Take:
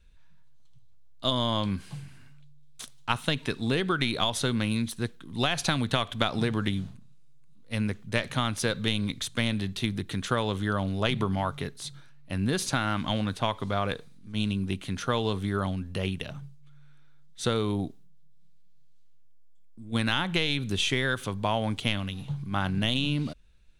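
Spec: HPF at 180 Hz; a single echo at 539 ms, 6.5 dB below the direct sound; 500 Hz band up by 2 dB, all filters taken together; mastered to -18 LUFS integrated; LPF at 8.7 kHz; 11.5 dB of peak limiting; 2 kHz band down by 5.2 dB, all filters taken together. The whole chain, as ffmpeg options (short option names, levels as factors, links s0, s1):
-af "highpass=180,lowpass=8700,equalizer=f=500:t=o:g=3,equalizer=f=2000:t=o:g=-7.5,alimiter=limit=0.0891:level=0:latency=1,aecho=1:1:539:0.473,volume=5.96"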